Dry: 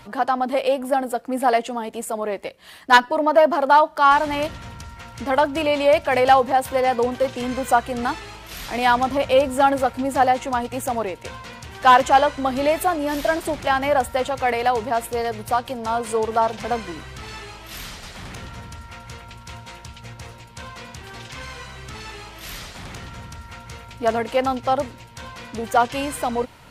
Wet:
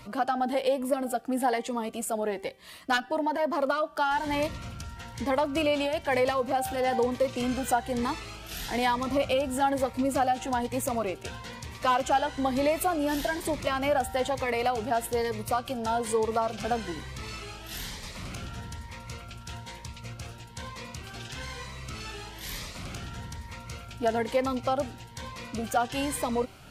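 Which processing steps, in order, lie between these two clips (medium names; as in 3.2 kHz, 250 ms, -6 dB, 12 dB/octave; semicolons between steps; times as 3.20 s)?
de-hum 387.4 Hz, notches 9; compression 2.5:1, threshold -20 dBFS, peak gain reduction 8.5 dB; Shepard-style phaser rising 1.1 Hz; trim -1.5 dB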